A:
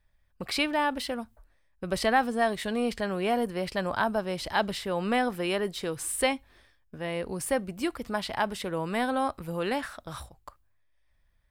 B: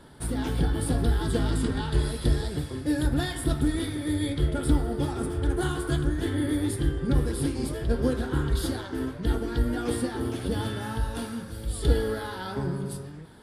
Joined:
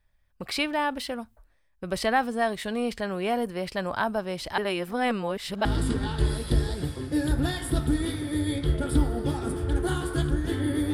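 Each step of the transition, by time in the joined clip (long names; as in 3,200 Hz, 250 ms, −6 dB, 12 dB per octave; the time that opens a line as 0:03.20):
A
0:04.58–0:05.65: reverse
0:05.65: continue with B from 0:01.39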